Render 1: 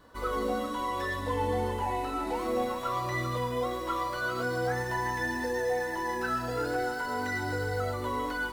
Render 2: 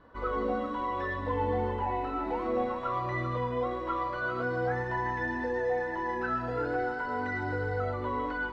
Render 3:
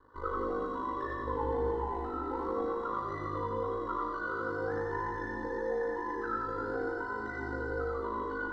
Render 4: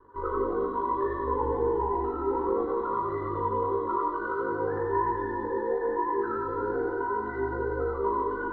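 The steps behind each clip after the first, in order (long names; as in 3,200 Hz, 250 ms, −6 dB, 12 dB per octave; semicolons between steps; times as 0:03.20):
low-pass filter 2,200 Hz 12 dB per octave
phaser with its sweep stopped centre 660 Hz, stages 6; ring modulation 26 Hz; echo with a time of its own for lows and highs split 350 Hz, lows 163 ms, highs 88 ms, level −3.5 dB
hollow resonant body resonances 390/970/2,400 Hz, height 13 dB, ringing for 70 ms; flanger 0.59 Hz, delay 8.3 ms, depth 9.2 ms, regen −36%; high-frequency loss of the air 390 metres; level +6.5 dB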